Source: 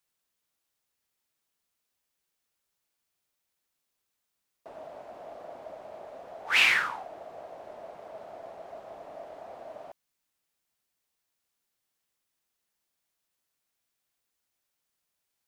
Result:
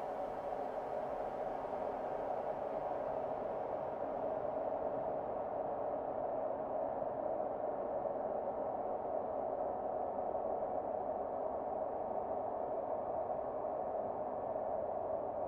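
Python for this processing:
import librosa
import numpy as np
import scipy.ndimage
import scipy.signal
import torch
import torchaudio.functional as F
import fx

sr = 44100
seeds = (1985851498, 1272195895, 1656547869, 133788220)

y = fx.env_lowpass_down(x, sr, base_hz=610.0, full_db=-40.5)
y = fx.granulator(y, sr, seeds[0], grain_ms=100.0, per_s=20.0, spray_ms=100.0, spread_st=3)
y = fx.notch_comb(y, sr, f0_hz=170.0)
y = fx.paulstretch(y, sr, seeds[1], factor=14.0, window_s=1.0, from_s=4.65)
y = y * 10.0 ** (10.5 / 20.0)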